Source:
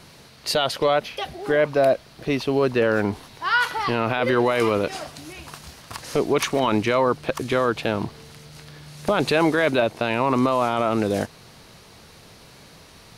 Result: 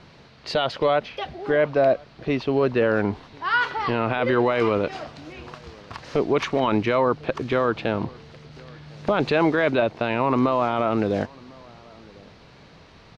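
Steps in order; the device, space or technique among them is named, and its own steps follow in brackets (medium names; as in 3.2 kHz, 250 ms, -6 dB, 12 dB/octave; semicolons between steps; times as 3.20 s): shout across a valley (distance through air 180 m; echo from a far wall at 180 m, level -25 dB)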